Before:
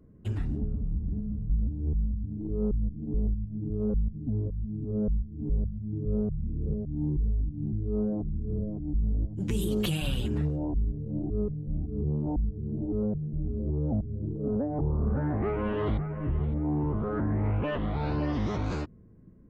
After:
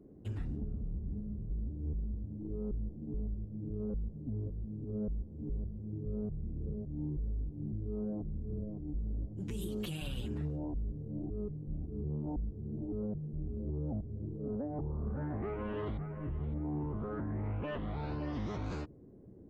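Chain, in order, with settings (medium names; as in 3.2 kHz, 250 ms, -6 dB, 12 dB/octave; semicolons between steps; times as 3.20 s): peak limiter -22.5 dBFS, peak gain reduction 6 dB; band noise 59–410 Hz -49 dBFS; trim -7.5 dB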